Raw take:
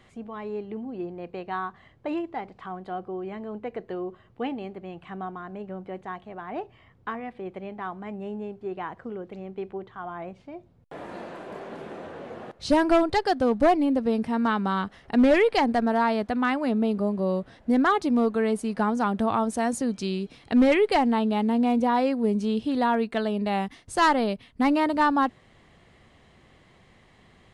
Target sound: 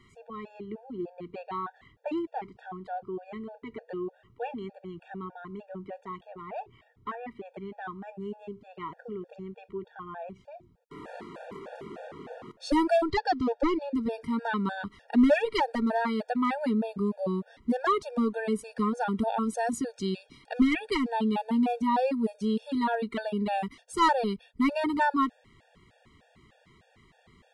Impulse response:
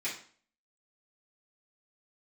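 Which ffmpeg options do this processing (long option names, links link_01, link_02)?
-filter_complex "[0:a]asettb=1/sr,asplit=3[link_01][link_02][link_03];[link_01]atrim=end=13.084[link_04];[link_02]atrim=start=13.08:end=13.94,asetpts=PTS-STARTPTS,afade=type=in:duration=0.004:curve=qsin,afade=type=out:start_time=0.856:duration=0.004:curve=qsin,lowpass=frequency=6400:width=0.5412,lowpass=frequency=6400:width=1.3066[link_05];[link_03]atrim=start=13.936[link_06];[link_04][link_05]acrossfade=duration=0.004:curve1=hsin:curve2=qsin[link_07];[link_07][link_06]acrossfade=duration=0.004:curve1=qsin:curve2=hsin,afftfilt=real='re*gt(sin(2*PI*3.3*pts/sr)*(1-2*mod(floor(b*sr/1024/470),2)),0)':imag='im*gt(sin(2*PI*3.3*pts/sr)*(1-2*mod(floor(b*sr/1024/470),2)),0)':win_size=1024:overlap=0.75,volume=-1dB"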